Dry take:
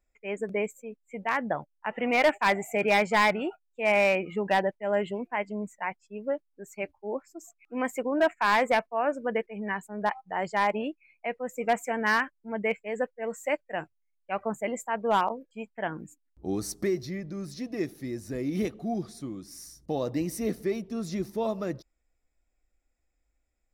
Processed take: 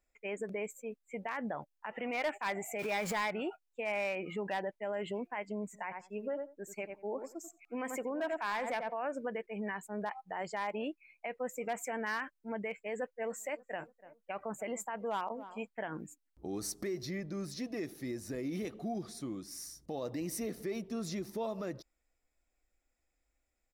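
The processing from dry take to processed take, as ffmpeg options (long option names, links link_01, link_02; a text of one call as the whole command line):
ffmpeg -i in.wav -filter_complex "[0:a]asettb=1/sr,asplit=3[link_01][link_02][link_03];[link_01]atrim=end=2.794[link_04];[link_02]atrim=start=2.79:end=3.21,asetpts=PTS-STARTPTS,afade=type=in:duration=0.004:curve=qsin,afade=type=out:start_time=0.416:duration=0.004:curve=qsin,aeval=exprs='val(0)+0.5*0.0266*sgn(val(0))':channel_layout=same[link_05];[link_03]atrim=start=3.206[link_06];[link_04][link_05]acrossfade=duration=0.004:curve1=hsin:curve2=qsin[link_07];[link_07][link_06]acrossfade=duration=0.004:curve1=qsin:curve2=hsin,asplit=3[link_08][link_09][link_10];[link_08]afade=type=out:start_time=5.73:duration=0.02[link_11];[link_09]asplit=2[link_12][link_13];[link_13]adelay=89,lowpass=frequency=1200:poles=1,volume=-10dB,asplit=2[link_14][link_15];[link_15]adelay=89,lowpass=frequency=1200:poles=1,volume=0.16[link_16];[link_12][link_14][link_16]amix=inputs=3:normalize=0,afade=type=in:start_time=5.73:duration=0.02,afade=type=out:start_time=8.93:duration=0.02[link_17];[link_10]afade=type=in:start_time=8.93:duration=0.02[link_18];[link_11][link_17][link_18]amix=inputs=3:normalize=0,asplit=3[link_19][link_20][link_21];[link_19]afade=type=out:start_time=13.24:duration=0.02[link_22];[link_20]asplit=2[link_23][link_24];[link_24]adelay=291,lowpass=frequency=1200:poles=1,volume=-23dB,asplit=2[link_25][link_26];[link_26]adelay=291,lowpass=frequency=1200:poles=1,volume=0.49,asplit=2[link_27][link_28];[link_28]adelay=291,lowpass=frequency=1200:poles=1,volume=0.49[link_29];[link_23][link_25][link_27][link_29]amix=inputs=4:normalize=0,afade=type=in:start_time=13.24:duration=0.02,afade=type=out:start_time=15.65:duration=0.02[link_30];[link_21]afade=type=in:start_time=15.65:duration=0.02[link_31];[link_22][link_30][link_31]amix=inputs=3:normalize=0,alimiter=level_in=4dB:limit=-24dB:level=0:latency=1:release=81,volume=-4dB,lowshelf=frequency=210:gain=-6.5" out.wav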